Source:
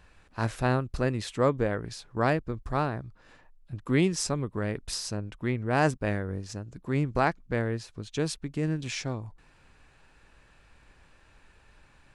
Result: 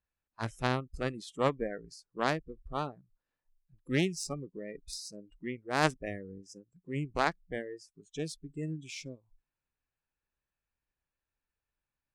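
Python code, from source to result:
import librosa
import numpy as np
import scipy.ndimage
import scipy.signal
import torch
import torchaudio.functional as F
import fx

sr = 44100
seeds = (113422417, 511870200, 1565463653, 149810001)

y = fx.cheby_harmonics(x, sr, harmonics=(3, 6), levels_db=(-13, -35), full_scale_db=-9.0)
y = fx.noise_reduce_blind(y, sr, reduce_db=25)
y = F.gain(torch.from_numpy(y), 1.5).numpy()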